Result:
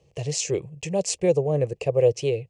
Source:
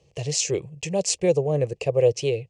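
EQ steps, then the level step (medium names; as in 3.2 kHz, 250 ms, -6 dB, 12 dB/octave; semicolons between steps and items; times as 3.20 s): peaking EQ 4.6 kHz -4 dB 2 oct; 0.0 dB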